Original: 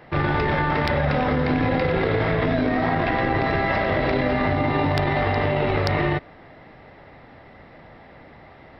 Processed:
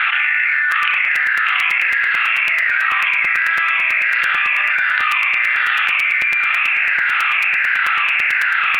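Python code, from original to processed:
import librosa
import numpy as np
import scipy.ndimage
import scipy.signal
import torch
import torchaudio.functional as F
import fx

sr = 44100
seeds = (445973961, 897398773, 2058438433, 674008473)

p1 = fx.spec_ripple(x, sr, per_octave=0.66, drift_hz=-1.4, depth_db=10)
p2 = scipy.signal.sosfilt(scipy.signal.butter(4, 1200.0, 'highpass', fs=sr, output='sos'), p1)
p3 = fx.tilt_eq(p2, sr, slope=4.0)
p4 = fx.formant_shift(p3, sr, semitones=4)
p5 = scipy.signal.sosfilt(scipy.signal.butter(6, 2700.0, 'lowpass', fs=sr, output='sos'), p4)
p6 = fx.peak_eq(p5, sr, hz=1700.0, db=11.5, octaves=0.78)
p7 = p6 + fx.room_flutter(p6, sr, wall_m=5.7, rt60_s=0.27, dry=0)
p8 = fx.rev_freeverb(p7, sr, rt60_s=0.91, hf_ratio=0.85, predelay_ms=40, drr_db=12.5)
p9 = fx.buffer_crackle(p8, sr, first_s=0.71, period_s=0.11, block=256, kind='repeat')
p10 = fx.env_flatten(p9, sr, amount_pct=100)
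y = F.gain(torch.from_numpy(p10), -3.0).numpy()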